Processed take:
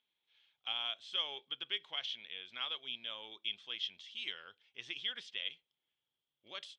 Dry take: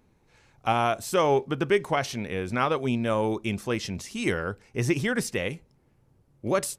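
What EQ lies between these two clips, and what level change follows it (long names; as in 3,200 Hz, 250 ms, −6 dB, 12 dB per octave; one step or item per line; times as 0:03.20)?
resonant band-pass 3,300 Hz, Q 14
high-frequency loss of the air 110 metres
+9.5 dB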